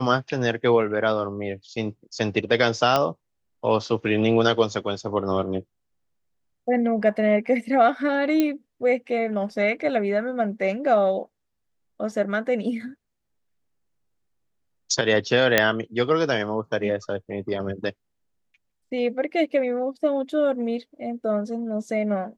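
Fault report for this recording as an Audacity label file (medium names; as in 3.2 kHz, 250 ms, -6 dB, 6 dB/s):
2.960000	2.960000	pop -7 dBFS
8.400000	8.400000	pop -9 dBFS
12.120000	12.120000	dropout 2.3 ms
15.580000	15.580000	pop -1 dBFS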